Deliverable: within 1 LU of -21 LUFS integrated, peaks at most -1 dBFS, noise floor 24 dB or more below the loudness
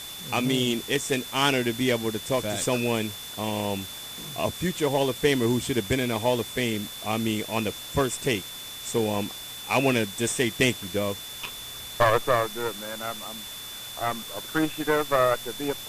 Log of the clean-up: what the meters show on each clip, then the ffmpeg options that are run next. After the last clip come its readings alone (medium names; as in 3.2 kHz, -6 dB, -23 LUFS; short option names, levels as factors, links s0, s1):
steady tone 3.5 kHz; tone level -39 dBFS; noise floor -39 dBFS; noise floor target -51 dBFS; loudness -26.5 LUFS; peak level -7.5 dBFS; loudness target -21.0 LUFS
-> -af "bandreject=f=3500:w=30"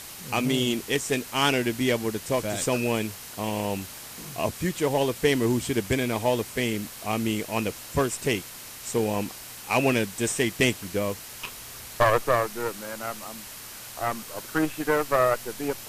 steady tone not found; noise floor -42 dBFS; noise floor target -51 dBFS
-> -af "afftdn=nr=9:nf=-42"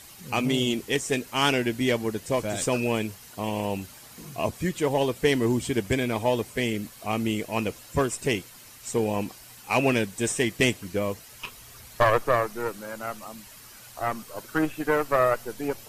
noise floor -48 dBFS; noise floor target -51 dBFS
-> -af "afftdn=nr=6:nf=-48"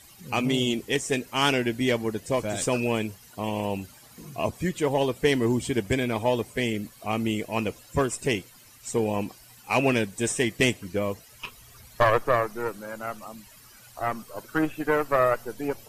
noise floor -52 dBFS; loudness -26.5 LUFS; peak level -7.5 dBFS; loudness target -21.0 LUFS
-> -af "volume=1.88"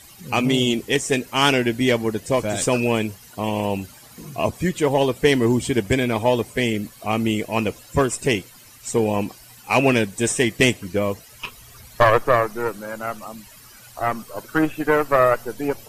loudness -21.0 LUFS; peak level -2.0 dBFS; noise floor -46 dBFS